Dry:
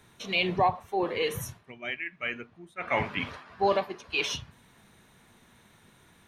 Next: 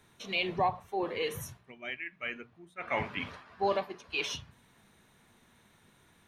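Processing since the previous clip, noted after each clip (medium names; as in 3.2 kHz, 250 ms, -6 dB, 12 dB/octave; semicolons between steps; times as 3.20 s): hum notches 60/120/180 Hz; trim -4.5 dB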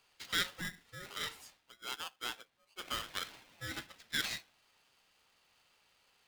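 band-pass filter 3 kHz, Q 1.3; polarity switched at an audio rate 910 Hz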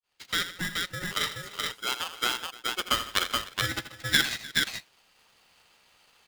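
fade-in on the opening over 0.85 s; transient shaper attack +8 dB, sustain -8 dB; multi-tap echo 81/155/301/426 ms -12/-19.5/-20/-3 dB; trim +7 dB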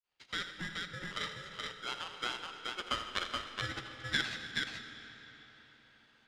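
distance through air 89 m; reverberation RT60 4.3 s, pre-delay 15 ms, DRR 8 dB; trim -8 dB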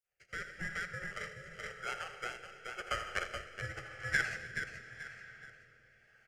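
static phaser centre 1 kHz, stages 6; rotary cabinet horn 0.9 Hz; delay 862 ms -17.5 dB; trim +4.5 dB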